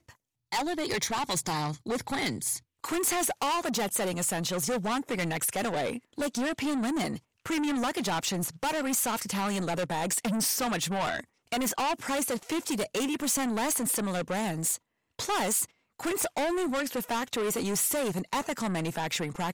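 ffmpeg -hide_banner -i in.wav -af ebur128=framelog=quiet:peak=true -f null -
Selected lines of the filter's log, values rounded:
Integrated loudness:
  I:         -29.6 LUFS
  Threshold: -39.6 LUFS
Loudness range:
  LRA:         1.5 LU
  Threshold: -49.5 LUFS
  LRA low:   -30.3 LUFS
  LRA high:  -28.9 LUFS
True peak:
  Peak:      -18.7 dBFS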